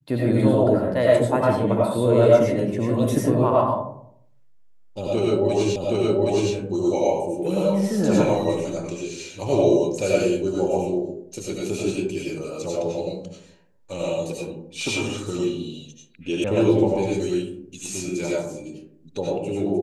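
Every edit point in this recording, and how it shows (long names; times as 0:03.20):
0:05.76: the same again, the last 0.77 s
0:16.44: cut off before it has died away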